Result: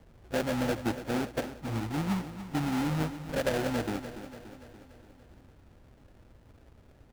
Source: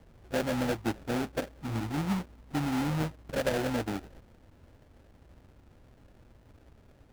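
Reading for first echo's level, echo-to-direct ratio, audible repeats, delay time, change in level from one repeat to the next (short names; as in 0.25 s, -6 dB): -12.0 dB, -10.5 dB, 5, 0.288 s, -5.0 dB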